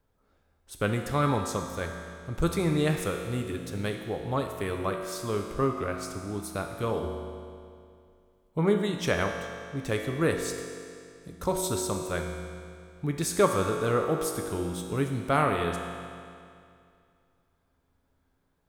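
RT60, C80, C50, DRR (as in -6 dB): 2.4 s, 5.5 dB, 4.5 dB, 3.0 dB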